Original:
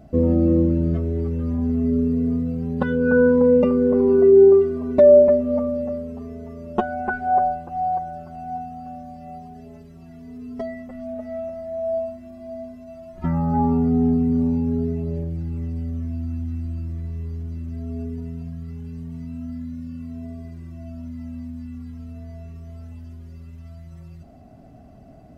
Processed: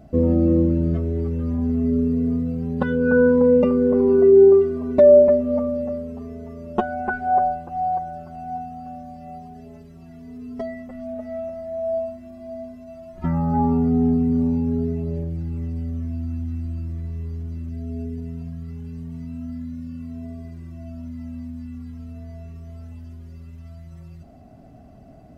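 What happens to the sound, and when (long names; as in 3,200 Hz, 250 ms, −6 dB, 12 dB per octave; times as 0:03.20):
0:17.69–0:18.29: parametric band 1,100 Hz −12 dB 0.42 octaves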